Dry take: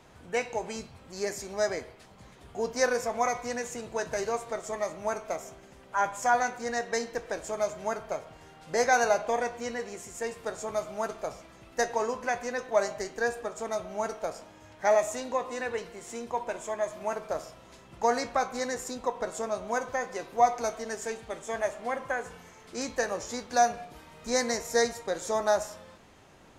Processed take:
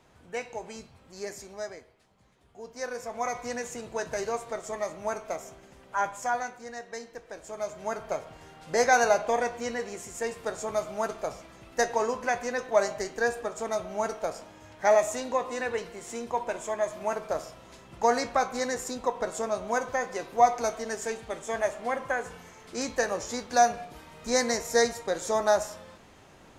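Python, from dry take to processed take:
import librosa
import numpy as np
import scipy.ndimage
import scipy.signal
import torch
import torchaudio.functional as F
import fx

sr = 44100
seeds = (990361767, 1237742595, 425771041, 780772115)

y = fx.gain(x, sr, db=fx.line((1.42, -5.0), (1.84, -12.5), (2.63, -12.5), (3.45, -0.5), (5.98, -0.5), (6.71, -9.0), (7.27, -9.0), (8.12, 2.0)))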